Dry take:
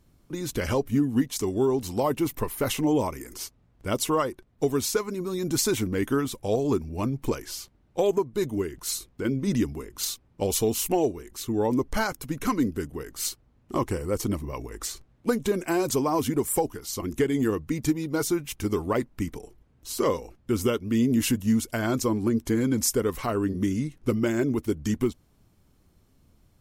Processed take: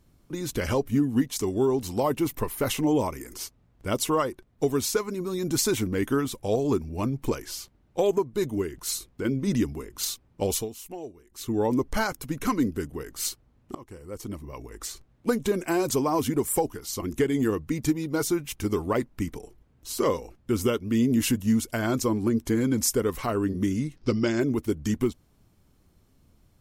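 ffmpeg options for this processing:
-filter_complex "[0:a]asettb=1/sr,asplit=3[s0][s1][s2];[s0]atrim=end=23.964[s3];[s1]atrim=start=23.96:end=24.4,asetpts=PTS-STARTPTS,afade=t=in:d=0.004:c=qsin,afade=t=out:st=0.436:d=0.004:c=qsin,lowpass=f=5000:t=q:w=4.3[s4];[s2]atrim=start=24.396[s5];[s3][s4]acrossfade=d=0.004:c1=hsin:c2=qsin[s6];[s6][s5]acrossfade=d=0.004:c1=qsin:c2=hsin,asplit=4[s7][s8][s9][s10];[s7]atrim=end=10.69,asetpts=PTS-STARTPTS,afade=t=out:st=10.52:d=0.17:silence=0.188365[s11];[s8]atrim=start=10.69:end=11.3,asetpts=PTS-STARTPTS,volume=0.188[s12];[s9]atrim=start=11.3:end=13.75,asetpts=PTS-STARTPTS,afade=t=in:d=0.17:silence=0.188365,afade=t=out:st=2.446:d=0.004:c=hsin:silence=0.0668344[s13];[s10]atrim=start=13.75,asetpts=PTS-STARTPTS,afade=t=in:d=1.57:silence=0.0668344[s14];[s11][s12][s13][s14]concat=n=4:v=0:a=1"

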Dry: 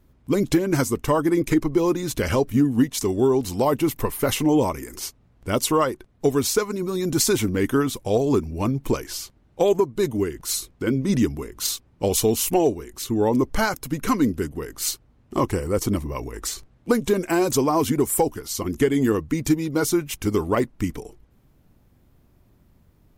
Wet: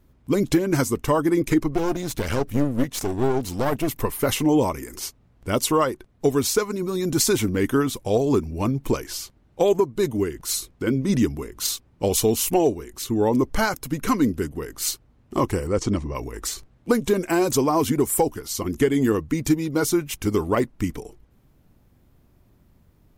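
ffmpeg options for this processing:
-filter_complex "[0:a]asplit=3[s0][s1][s2];[s0]afade=t=out:st=1.72:d=0.02[s3];[s1]aeval=exprs='clip(val(0),-1,0.0266)':c=same,afade=t=in:st=1.72:d=0.02,afade=t=out:st=3.87:d=0.02[s4];[s2]afade=t=in:st=3.87:d=0.02[s5];[s3][s4][s5]amix=inputs=3:normalize=0,asettb=1/sr,asplit=3[s6][s7][s8];[s6]atrim=end=15.674[s9];[s7]atrim=start=15.67:end=16.15,asetpts=PTS-STARTPTS,afade=t=in:d=0.004:c=qsin,afade=t=out:st=0.476:d=0.004:c=qsin,lowpass=f=7400:w=0.5412,lowpass=f=7400:w=1.3066[s10];[s8]atrim=start=16.146[s11];[s9][s10]acrossfade=d=0.004:c1=hsin:c2=qsin[s12];[s12][s11]acrossfade=d=0.004:c1=qsin:c2=hsin"

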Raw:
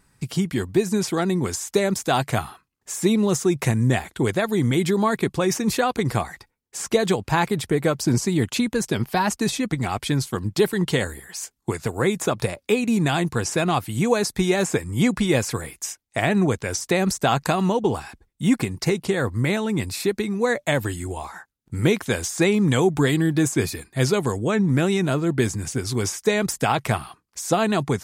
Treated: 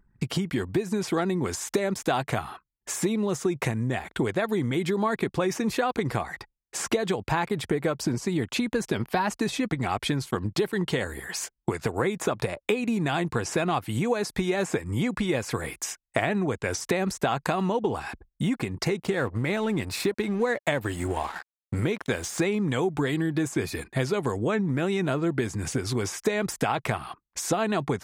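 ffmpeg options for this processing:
-filter_complex "[0:a]asettb=1/sr,asplit=3[s0][s1][s2];[s0]atrim=end=19.024[s3];[s1]atrim=start=19.02:end=22.47,asetpts=PTS-STARTPTS,afade=t=in:d=0.004:c=qsin,afade=t=out:st=3.446:d=0.004:c=qsin,aeval=exprs='sgn(val(0))*max(abs(val(0))-0.0075,0)':c=same[s4];[s2]atrim=start=22.466[s5];[s3][s4]acrossfade=d=0.004:c1=hsin:c2=qsin[s6];[s6][s5]acrossfade=d=0.004:c1=qsin:c2=hsin,acompressor=threshold=0.0355:ratio=10,bass=f=250:g=-4,treble=f=4000:g=-8,anlmdn=0.000158,volume=2.51"

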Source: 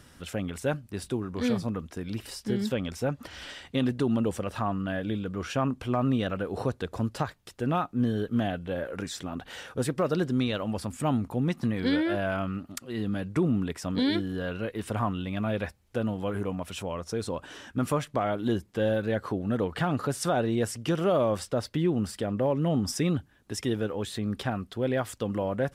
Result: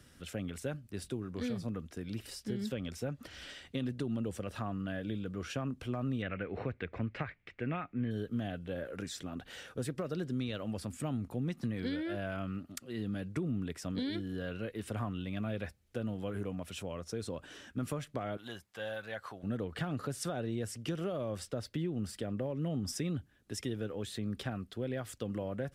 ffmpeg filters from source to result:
-filter_complex "[0:a]asettb=1/sr,asplit=3[s0][s1][s2];[s0]atrim=end=6.224[s3];[s1]atrim=start=6.22:end=8.11,asetpts=PTS-STARTPTS,afade=t=in:d=0.004:c=qsin,afade=t=out:st=1.886:d=0.004:c=qsin,lowpass=f=2200:t=q:w=5.7[s4];[s2]atrim=start=8.106[s5];[s3][s4]acrossfade=d=0.004:c1=hsin:c2=qsin[s6];[s6][s5]acrossfade=d=0.004:c1=qsin:c2=hsin,asettb=1/sr,asplit=3[s7][s8][s9];[s7]atrim=end=18.374[s10];[s8]atrim=start=18.37:end=19.43,asetpts=PTS-STARTPTS,afade=t=in:d=0.004:c=qsin,afade=t=out:st=1.056:d=0.004:c=qsin,lowshelf=f=540:t=q:w=1.5:g=-13.5[s11];[s9]atrim=start=19.426[s12];[s10][s11]acrossfade=d=0.004:c1=hsin:c2=qsin[s13];[s13][s12]acrossfade=d=0.004:c1=qsin:c2=hsin,equalizer=f=930:t=o:w=0.7:g=-7,acrossover=split=130[s14][s15];[s15]acompressor=threshold=0.0398:ratio=6[s16];[s14][s16]amix=inputs=2:normalize=0,volume=0.531"

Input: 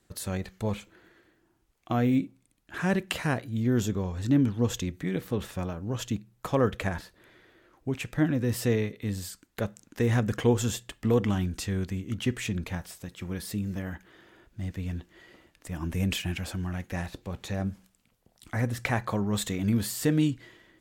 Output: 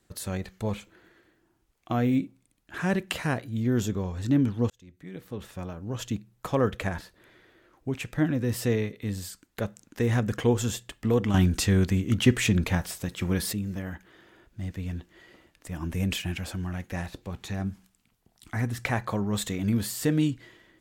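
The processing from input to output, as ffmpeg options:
-filter_complex "[0:a]asettb=1/sr,asplit=3[s0][s1][s2];[s0]atrim=end=17.304[s3];[s1]atrim=start=17.3:end=18.81,asetpts=PTS-STARTPTS,afade=t=in:d=0.004:c=qsin,afade=t=out:st=1.506:d=0.004:c=qsin,equalizer=f=540:t=o:w=0.22:g=-14.5[s4];[s2]atrim=start=18.806[s5];[s3][s4]acrossfade=d=0.004:c1=hsin:c2=qsin[s6];[s6][s5]acrossfade=d=0.004:c1=qsin:c2=hsin,asplit=4[s7][s8][s9][s10];[s7]atrim=end=4.7,asetpts=PTS-STARTPTS,afade=t=out:st=4.696:d=0.004:c=hsin[s11];[s8]atrim=start=4.7:end=11.342,asetpts=PTS-STARTPTS,afade=t=in:d=1.45[s12];[s9]atrim=start=11.338:end=13.532,asetpts=PTS-STARTPTS,volume=2.51[s13];[s10]atrim=start=13.528[s14];[s11][s12]concat=n=2:v=0:a=1[s15];[s15][s13]acrossfade=d=0.004:c1=hsin:c2=hsin[s16];[s16][s14]acrossfade=d=0.004:c1=hsin:c2=hsin"

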